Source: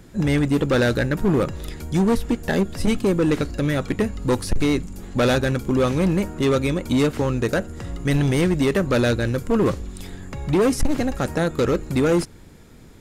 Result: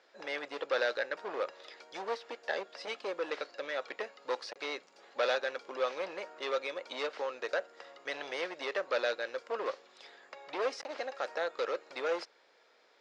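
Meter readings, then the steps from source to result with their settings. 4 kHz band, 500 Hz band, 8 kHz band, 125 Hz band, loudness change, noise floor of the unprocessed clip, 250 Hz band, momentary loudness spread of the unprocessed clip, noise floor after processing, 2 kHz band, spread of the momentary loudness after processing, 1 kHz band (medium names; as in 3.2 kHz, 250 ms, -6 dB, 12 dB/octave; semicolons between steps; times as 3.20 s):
-9.5 dB, -12.5 dB, -19.5 dB, under -40 dB, -15.0 dB, -45 dBFS, -30.5 dB, 7 LU, -66 dBFS, -8.5 dB, 10 LU, -9.0 dB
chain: elliptic band-pass 530–5100 Hz, stop band 80 dB; trim -8.5 dB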